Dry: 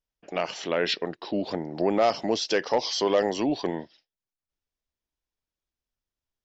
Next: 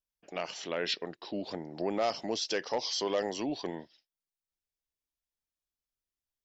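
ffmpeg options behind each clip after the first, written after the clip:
-af "highshelf=f=3900:g=7.5,volume=0.376"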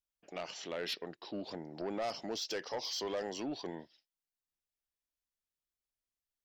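-af "asoftclip=type=tanh:threshold=0.0447,volume=0.668"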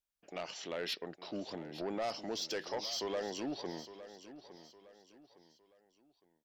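-af "aecho=1:1:860|1720|2580:0.2|0.0718|0.0259"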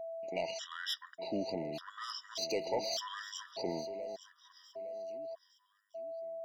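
-af "aeval=exprs='val(0)+0.00631*sin(2*PI*660*n/s)':c=same,afftfilt=real='re*gt(sin(2*PI*0.84*pts/sr)*(1-2*mod(floor(b*sr/1024/970),2)),0)':imag='im*gt(sin(2*PI*0.84*pts/sr)*(1-2*mod(floor(b*sr/1024/970),2)),0)':win_size=1024:overlap=0.75,volume=1.68"

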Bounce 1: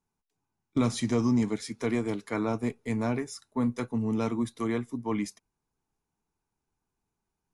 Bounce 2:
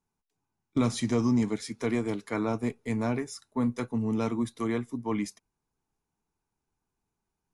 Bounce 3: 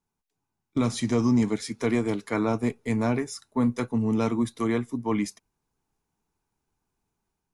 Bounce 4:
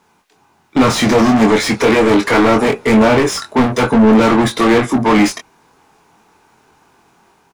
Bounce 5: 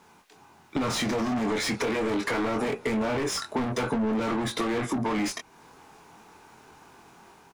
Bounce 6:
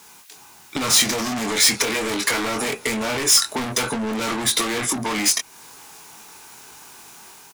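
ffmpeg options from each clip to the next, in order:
-af anull
-af "dynaudnorm=f=730:g=3:m=1.58"
-filter_complex "[0:a]asplit=2[s0][s1];[s1]highpass=f=720:p=1,volume=44.7,asoftclip=type=tanh:threshold=0.237[s2];[s0][s2]amix=inputs=2:normalize=0,lowpass=f=1800:p=1,volume=0.501,asplit=2[s3][s4];[s4]adelay=23,volume=0.596[s5];[s3][s5]amix=inputs=2:normalize=0,volume=2.51"
-af "alimiter=limit=0.299:level=0:latency=1:release=25,acompressor=threshold=0.02:ratio=2"
-af "crystalizer=i=8:c=0"

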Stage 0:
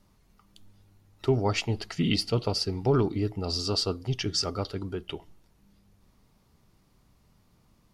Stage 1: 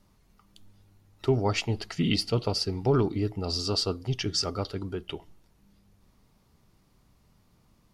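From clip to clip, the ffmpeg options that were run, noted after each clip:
-af anull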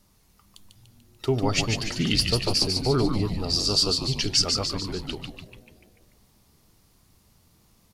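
-filter_complex "[0:a]highshelf=f=4000:g=11,asplit=2[s0][s1];[s1]asplit=7[s2][s3][s4][s5][s6][s7][s8];[s2]adelay=146,afreqshift=-120,volume=0.596[s9];[s3]adelay=292,afreqshift=-240,volume=0.32[s10];[s4]adelay=438,afreqshift=-360,volume=0.174[s11];[s5]adelay=584,afreqshift=-480,volume=0.0933[s12];[s6]adelay=730,afreqshift=-600,volume=0.0507[s13];[s7]adelay=876,afreqshift=-720,volume=0.0272[s14];[s8]adelay=1022,afreqshift=-840,volume=0.0148[s15];[s9][s10][s11][s12][s13][s14][s15]amix=inputs=7:normalize=0[s16];[s0][s16]amix=inputs=2:normalize=0"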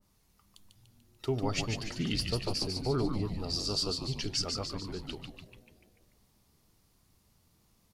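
-af "adynamicequalizer=threshold=0.00891:dfrequency=1900:dqfactor=0.7:tfrequency=1900:tqfactor=0.7:attack=5:release=100:ratio=0.375:range=2:mode=cutabove:tftype=highshelf,volume=0.422"

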